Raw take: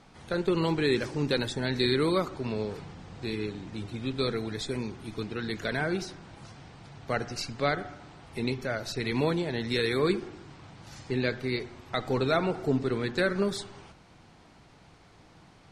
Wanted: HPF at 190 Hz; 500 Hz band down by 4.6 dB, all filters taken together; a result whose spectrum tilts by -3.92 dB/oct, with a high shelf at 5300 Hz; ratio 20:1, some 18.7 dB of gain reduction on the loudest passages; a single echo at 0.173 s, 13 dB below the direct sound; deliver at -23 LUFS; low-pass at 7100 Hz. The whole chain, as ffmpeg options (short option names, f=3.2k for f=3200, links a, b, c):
-af "highpass=190,lowpass=7.1k,equalizer=f=500:t=o:g=-6,highshelf=f=5.3k:g=8,acompressor=threshold=-42dB:ratio=20,aecho=1:1:173:0.224,volume=24dB"